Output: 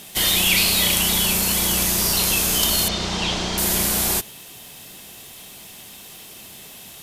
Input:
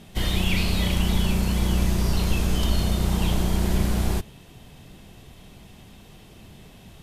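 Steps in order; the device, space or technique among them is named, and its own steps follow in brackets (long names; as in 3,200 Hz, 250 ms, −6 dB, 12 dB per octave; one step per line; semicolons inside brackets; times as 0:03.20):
turntable without a phono preamp (RIAA equalisation recording; white noise bed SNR 34 dB)
0:02.88–0:03.58: low-pass filter 5,600 Hz 24 dB per octave
level +5.5 dB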